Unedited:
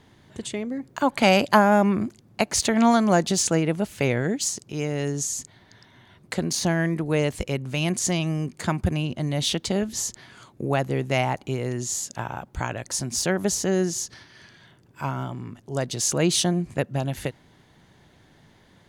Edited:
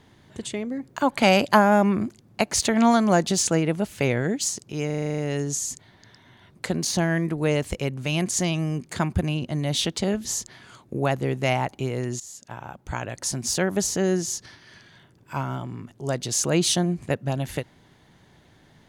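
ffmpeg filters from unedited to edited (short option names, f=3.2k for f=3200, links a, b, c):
-filter_complex "[0:a]asplit=10[a][b][c][d][e][f][g][h][i][j];[a]atrim=end=4.902[k];[b]atrim=start=4.858:end=4.902[l];[c]atrim=start=4.858:end=4.902[m];[d]atrim=start=4.858:end=4.902[n];[e]atrim=start=4.858:end=4.902[o];[f]atrim=start=4.858:end=4.902[p];[g]atrim=start=4.858:end=4.902[q];[h]atrim=start=4.858:end=4.902[r];[i]atrim=start=4.858:end=11.88,asetpts=PTS-STARTPTS,afade=t=out:st=7.018:d=0.004:c=hsin:silence=0.158489[s];[j]atrim=start=11.88,asetpts=PTS-STARTPTS,afade=t=in:d=0.99:silence=0.158489[t];[k][l]acrossfade=d=0.004:c1=hsin:c2=hsin[u];[u][m]acrossfade=d=0.004:c1=hsin:c2=hsin[v];[v][n]acrossfade=d=0.004:c1=hsin:c2=hsin[w];[w][o]acrossfade=d=0.004:c1=hsin:c2=hsin[x];[x][p]acrossfade=d=0.004:c1=hsin:c2=hsin[y];[y][q]acrossfade=d=0.004:c1=hsin:c2=hsin[z];[z][r]acrossfade=d=0.004:c1=hsin:c2=hsin[aa];[s][t]concat=n=2:v=0:a=1[ab];[aa][ab]acrossfade=d=0.004:c1=hsin:c2=hsin"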